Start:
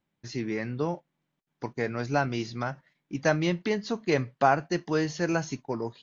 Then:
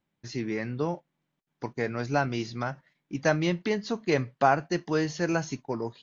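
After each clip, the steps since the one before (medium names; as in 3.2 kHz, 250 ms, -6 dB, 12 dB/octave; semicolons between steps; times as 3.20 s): no audible change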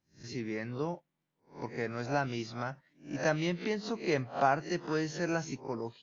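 reverse spectral sustain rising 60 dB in 0.33 s; trim -6 dB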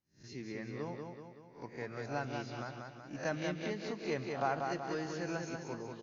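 feedback delay 189 ms, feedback 52%, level -4.5 dB; trim -7 dB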